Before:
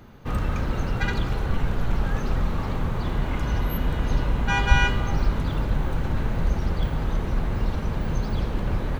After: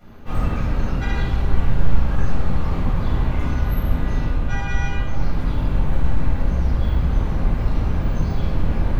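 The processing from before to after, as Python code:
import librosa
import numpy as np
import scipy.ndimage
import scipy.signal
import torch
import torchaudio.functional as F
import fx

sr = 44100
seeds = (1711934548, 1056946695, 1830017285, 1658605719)

y = fx.rider(x, sr, range_db=10, speed_s=0.5)
y = fx.room_shoebox(y, sr, seeds[0], volume_m3=540.0, walls='mixed', distance_m=6.9)
y = y * librosa.db_to_amplitude(-14.5)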